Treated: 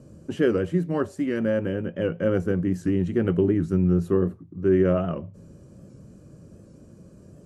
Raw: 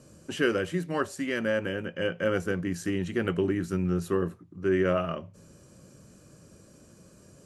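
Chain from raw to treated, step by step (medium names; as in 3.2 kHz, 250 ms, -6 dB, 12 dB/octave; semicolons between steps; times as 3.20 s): tilt shelf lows +8 dB, about 850 Hz; warped record 78 rpm, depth 100 cents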